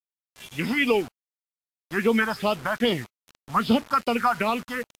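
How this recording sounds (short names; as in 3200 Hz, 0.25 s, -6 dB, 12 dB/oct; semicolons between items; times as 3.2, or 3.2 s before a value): phasing stages 4, 2.5 Hz, lowest notch 380–1700 Hz; a quantiser's noise floor 8-bit, dither none; Vorbis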